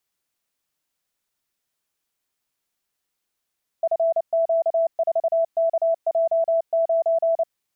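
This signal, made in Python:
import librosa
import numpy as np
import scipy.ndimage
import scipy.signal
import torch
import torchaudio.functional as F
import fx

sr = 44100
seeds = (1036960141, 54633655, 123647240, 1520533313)

y = fx.morse(sr, text='FQ4KJ9', wpm=29, hz=661.0, level_db=-16.5)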